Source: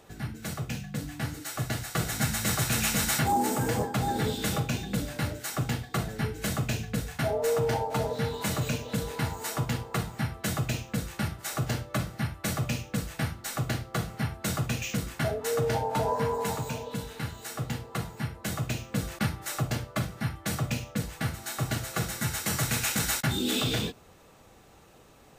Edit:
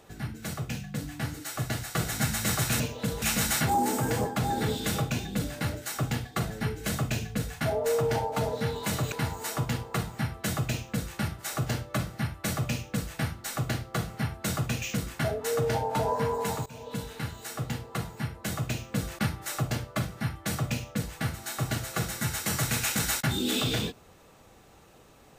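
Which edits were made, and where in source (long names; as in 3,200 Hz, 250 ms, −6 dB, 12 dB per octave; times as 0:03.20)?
0:08.70–0:09.12: move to 0:02.80
0:16.66–0:16.95: fade in, from −23.5 dB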